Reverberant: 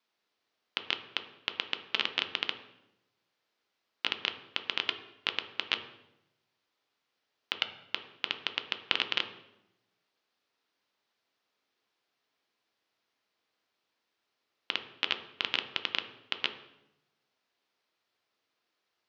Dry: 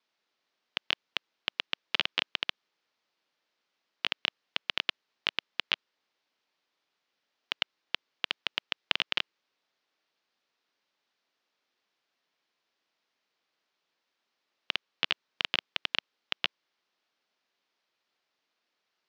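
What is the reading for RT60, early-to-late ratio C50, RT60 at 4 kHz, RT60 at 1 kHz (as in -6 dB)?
0.90 s, 10.5 dB, 0.70 s, 0.85 s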